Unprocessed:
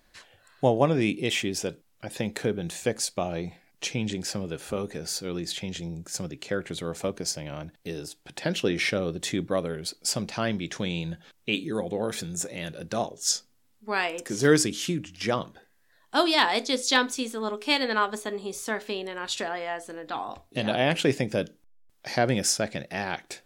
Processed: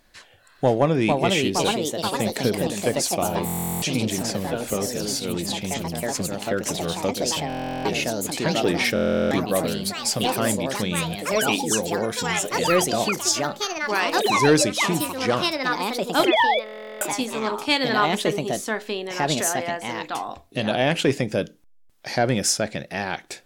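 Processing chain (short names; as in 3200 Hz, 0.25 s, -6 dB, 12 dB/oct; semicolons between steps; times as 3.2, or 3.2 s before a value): 16.23–17.09 sine-wave speech; in parallel at -11 dB: sine folder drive 5 dB, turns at -6.5 dBFS; on the sum: echoes that change speed 0.552 s, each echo +3 st, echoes 3; stuck buffer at 3.45/7.48/8.94/16.64, samples 1024, times 15; gain -1.5 dB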